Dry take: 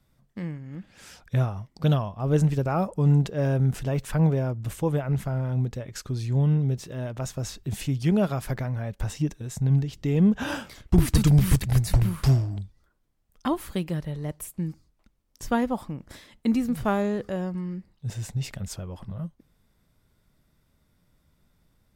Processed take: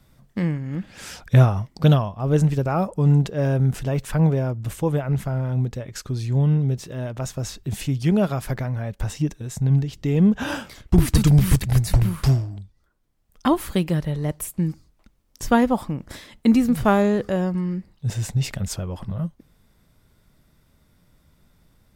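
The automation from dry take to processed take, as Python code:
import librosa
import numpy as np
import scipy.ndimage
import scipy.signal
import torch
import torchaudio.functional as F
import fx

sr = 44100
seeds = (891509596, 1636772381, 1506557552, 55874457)

y = fx.gain(x, sr, db=fx.line((1.58, 10.0), (2.18, 3.0), (12.24, 3.0), (12.59, -3.5), (13.48, 7.0)))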